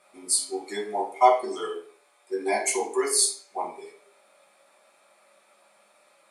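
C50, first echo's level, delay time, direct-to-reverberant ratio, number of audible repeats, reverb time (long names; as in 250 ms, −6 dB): 8.5 dB, no echo audible, no echo audible, −2.0 dB, no echo audible, 0.50 s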